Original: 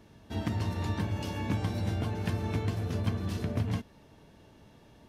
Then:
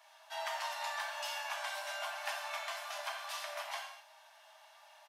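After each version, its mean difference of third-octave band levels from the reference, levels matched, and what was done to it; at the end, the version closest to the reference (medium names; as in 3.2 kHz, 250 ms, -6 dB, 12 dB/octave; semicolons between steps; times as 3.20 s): 19.5 dB: steep high-pass 640 Hz 96 dB/octave; comb 5 ms, depth 37%; gated-style reverb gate 270 ms falling, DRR 0 dB; trim +1 dB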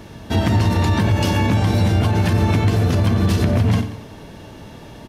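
2.0 dB: de-hum 73.36 Hz, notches 6; on a send: feedback delay 91 ms, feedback 47%, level -16.5 dB; on the sum: loudness maximiser +26 dB; trim -7.5 dB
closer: second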